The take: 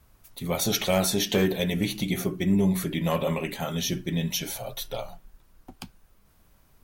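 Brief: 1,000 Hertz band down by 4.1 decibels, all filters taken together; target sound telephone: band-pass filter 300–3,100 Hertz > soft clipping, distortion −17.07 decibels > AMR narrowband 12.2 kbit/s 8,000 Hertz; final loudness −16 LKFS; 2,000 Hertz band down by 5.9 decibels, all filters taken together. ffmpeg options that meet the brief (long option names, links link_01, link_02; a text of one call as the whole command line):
ffmpeg -i in.wav -af "highpass=300,lowpass=3100,equalizer=frequency=1000:width_type=o:gain=-4.5,equalizer=frequency=2000:width_type=o:gain=-5,asoftclip=threshold=-21.5dB,volume=18.5dB" -ar 8000 -c:a libopencore_amrnb -b:a 12200 out.amr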